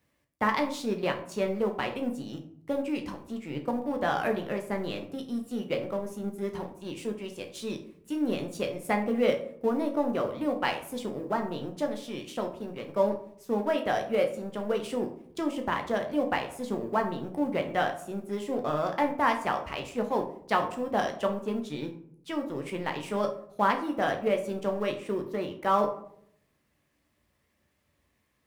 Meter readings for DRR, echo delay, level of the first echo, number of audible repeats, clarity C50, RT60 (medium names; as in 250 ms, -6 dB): 3.5 dB, no echo, no echo, no echo, 10.0 dB, 0.65 s